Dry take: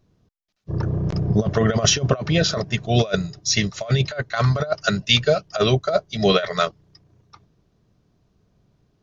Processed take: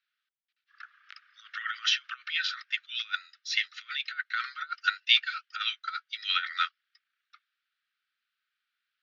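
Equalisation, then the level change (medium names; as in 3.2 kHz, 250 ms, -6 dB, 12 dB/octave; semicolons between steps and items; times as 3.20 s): steep high-pass 1.3 kHz 96 dB/octave; low-pass 3.8 kHz 24 dB/octave; -2.5 dB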